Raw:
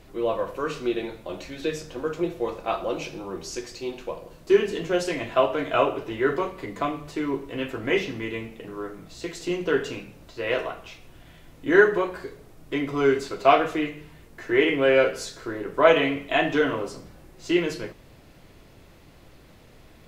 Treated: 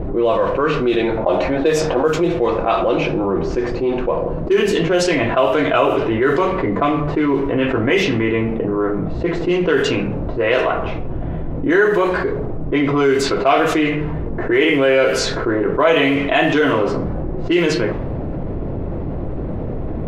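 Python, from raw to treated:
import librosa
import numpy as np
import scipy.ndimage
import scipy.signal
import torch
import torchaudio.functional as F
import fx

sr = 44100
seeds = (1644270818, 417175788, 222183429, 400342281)

y = fx.peak_eq(x, sr, hz=740.0, db=12.0, octaves=1.6, at=(1.17, 2.08))
y = fx.env_lowpass(y, sr, base_hz=550.0, full_db=-18.0)
y = fx.env_flatten(y, sr, amount_pct=70)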